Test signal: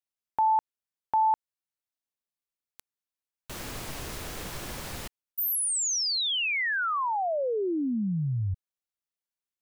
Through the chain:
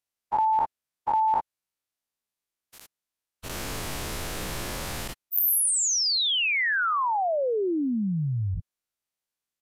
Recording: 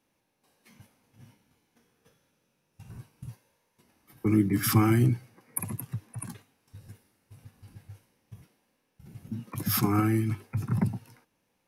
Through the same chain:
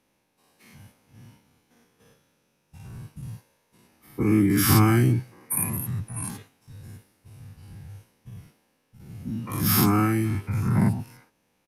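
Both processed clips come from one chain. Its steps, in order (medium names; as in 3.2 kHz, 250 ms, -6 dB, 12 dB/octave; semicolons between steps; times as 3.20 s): every event in the spectrogram widened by 120 ms; resampled via 32 kHz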